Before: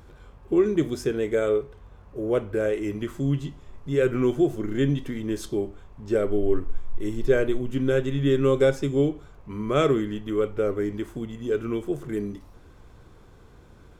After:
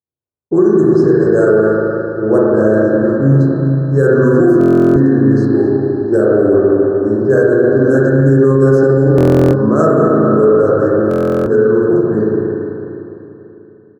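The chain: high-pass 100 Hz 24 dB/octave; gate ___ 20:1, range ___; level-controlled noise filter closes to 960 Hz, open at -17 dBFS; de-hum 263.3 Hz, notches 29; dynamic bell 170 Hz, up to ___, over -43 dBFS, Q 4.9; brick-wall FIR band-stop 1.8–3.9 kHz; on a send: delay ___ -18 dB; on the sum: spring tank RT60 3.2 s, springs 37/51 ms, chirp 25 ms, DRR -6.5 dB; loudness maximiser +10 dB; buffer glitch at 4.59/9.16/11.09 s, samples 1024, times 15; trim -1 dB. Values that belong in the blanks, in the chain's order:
-44 dBFS, -56 dB, +5 dB, 252 ms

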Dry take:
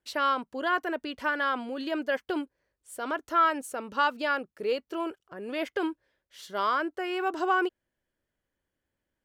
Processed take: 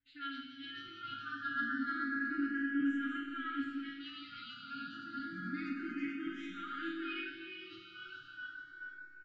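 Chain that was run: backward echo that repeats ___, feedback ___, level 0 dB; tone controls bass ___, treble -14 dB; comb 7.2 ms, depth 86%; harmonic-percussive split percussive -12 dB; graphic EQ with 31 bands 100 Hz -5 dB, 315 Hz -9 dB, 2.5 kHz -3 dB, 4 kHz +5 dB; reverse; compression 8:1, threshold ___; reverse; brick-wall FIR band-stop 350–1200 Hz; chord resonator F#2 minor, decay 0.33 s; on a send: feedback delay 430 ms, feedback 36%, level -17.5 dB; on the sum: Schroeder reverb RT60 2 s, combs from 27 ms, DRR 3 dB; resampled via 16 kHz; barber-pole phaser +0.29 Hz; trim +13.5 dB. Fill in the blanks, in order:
216 ms, 56%, +11 dB, -32 dBFS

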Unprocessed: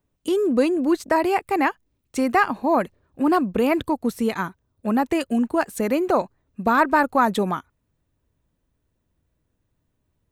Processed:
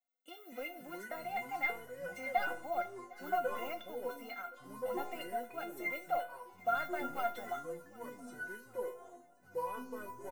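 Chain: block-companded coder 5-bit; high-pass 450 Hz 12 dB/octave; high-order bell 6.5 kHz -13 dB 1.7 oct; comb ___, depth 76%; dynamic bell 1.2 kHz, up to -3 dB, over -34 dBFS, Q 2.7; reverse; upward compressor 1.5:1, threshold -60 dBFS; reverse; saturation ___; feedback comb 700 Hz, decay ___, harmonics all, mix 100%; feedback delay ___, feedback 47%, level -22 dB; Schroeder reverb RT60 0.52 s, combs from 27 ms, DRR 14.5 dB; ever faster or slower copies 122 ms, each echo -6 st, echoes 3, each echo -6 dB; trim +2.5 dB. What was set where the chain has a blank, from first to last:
3.8 ms, -8 dBFS, 0.17 s, 757 ms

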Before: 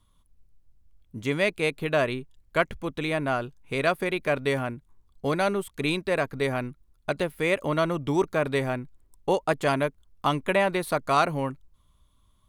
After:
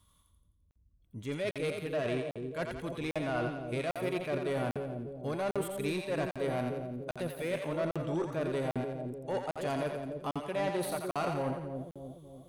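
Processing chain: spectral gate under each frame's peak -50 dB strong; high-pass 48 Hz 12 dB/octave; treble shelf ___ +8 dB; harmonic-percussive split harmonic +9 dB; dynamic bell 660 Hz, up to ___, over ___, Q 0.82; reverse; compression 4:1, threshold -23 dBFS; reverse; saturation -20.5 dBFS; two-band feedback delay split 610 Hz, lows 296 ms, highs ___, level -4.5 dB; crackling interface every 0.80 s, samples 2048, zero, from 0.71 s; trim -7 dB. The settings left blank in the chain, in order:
6 kHz, +6 dB, -29 dBFS, 86 ms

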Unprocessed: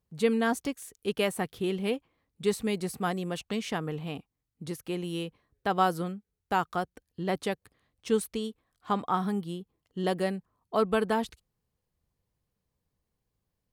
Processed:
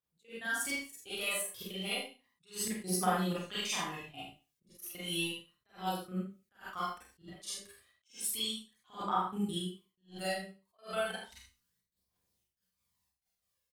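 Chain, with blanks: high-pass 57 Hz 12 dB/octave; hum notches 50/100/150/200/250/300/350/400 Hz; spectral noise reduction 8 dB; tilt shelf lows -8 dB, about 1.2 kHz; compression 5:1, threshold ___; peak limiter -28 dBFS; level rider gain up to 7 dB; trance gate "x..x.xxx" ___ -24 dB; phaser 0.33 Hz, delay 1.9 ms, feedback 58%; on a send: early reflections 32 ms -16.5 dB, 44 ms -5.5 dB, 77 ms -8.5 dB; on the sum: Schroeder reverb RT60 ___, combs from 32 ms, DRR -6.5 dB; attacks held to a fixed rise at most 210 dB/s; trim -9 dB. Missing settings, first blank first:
-39 dBFS, 185 bpm, 0.31 s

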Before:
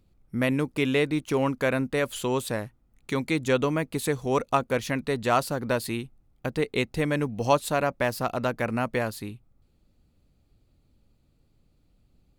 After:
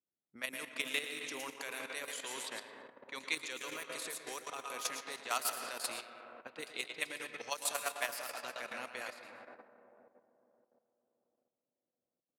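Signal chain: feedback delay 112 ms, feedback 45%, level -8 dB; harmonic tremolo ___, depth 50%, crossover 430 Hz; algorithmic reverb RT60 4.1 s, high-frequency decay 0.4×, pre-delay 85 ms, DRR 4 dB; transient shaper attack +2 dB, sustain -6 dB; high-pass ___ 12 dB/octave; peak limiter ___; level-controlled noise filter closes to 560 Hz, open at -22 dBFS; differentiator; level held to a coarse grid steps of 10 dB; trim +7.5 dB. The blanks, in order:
5.9 Hz, 170 Hz, -13 dBFS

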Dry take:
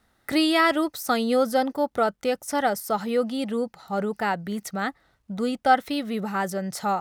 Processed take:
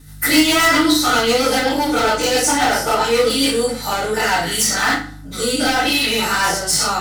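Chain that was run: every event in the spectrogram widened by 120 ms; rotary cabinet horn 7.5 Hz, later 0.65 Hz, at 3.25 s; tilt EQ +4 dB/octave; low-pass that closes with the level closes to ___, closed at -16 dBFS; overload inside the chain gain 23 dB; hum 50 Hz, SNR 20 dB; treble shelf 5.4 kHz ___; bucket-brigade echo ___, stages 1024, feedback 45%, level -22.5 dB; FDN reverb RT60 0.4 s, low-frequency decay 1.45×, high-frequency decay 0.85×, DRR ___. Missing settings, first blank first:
2.8 kHz, +7.5 dB, 95 ms, -9 dB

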